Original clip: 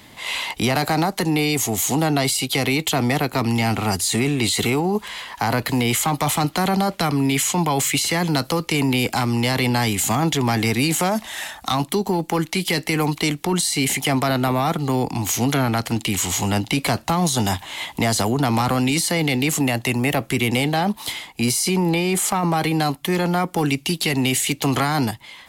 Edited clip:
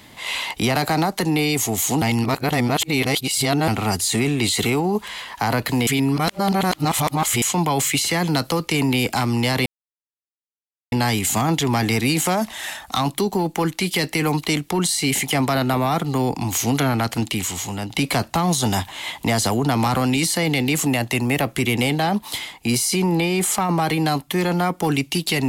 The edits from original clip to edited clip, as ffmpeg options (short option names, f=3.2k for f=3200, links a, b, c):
-filter_complex "[0:a]asplit=7[a][b][c][d][e][f][g];[a]atrim=end=2.022[h];[b]atrim=start=2.018:end=3.682,asetpts=PTS-STARTPTS,areverse[i];[c]atrim=start=3.678:end=5.872[j];[d]atrim=start=5.868:end=7.422,asetpts=PTS-STARTPTS,areverse[k];[e]atrim=start=7.418:end=9.66,asetpts=PTS-STARTPTS,afade=t=out:st=2.238:d=0.004:c=hsin,apad=pad_dur=1.26[l];[f]atrim=start=9.66:end=16.64,asetpts=PTS-STARTPTS,afade=t=in:d=0.004:c=hsin,afade=t=out:st=6.35:d=0.63:c=qua:silence=0.421697[m];[g]atrim=start=16.64,asetpts=PTS-STARTPTS,afade=t=in:d=0.004:c=hsin:silence=0.421697[n];[h][i]acrossfade=d=0.004:c1=hsin:c2=hsin[o];[o][j]acrossfade=d=0.004:c1=hsin:c2=hsin[p];[p][k]acrossfade=d=0.004:c1=hsin:c2=hsin[q];[l][m][n]concat=n=3:v=0:a=1[r];[q][r]acrossfade=d=0.004:c1=hsin:c2=hsin"